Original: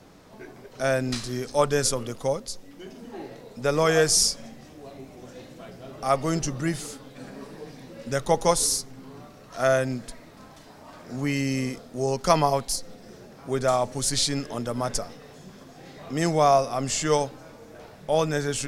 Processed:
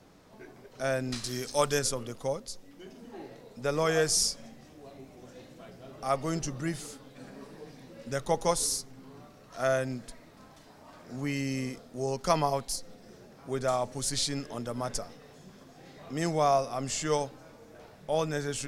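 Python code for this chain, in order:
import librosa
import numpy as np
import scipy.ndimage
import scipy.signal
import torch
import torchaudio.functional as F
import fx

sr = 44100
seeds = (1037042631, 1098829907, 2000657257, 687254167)

y = fx.high_shelf(x, sr, hz=2200.0, db=10.0, at=(1.24, 1.79))
y = y * librosa.db_to_amplitude(-6.0)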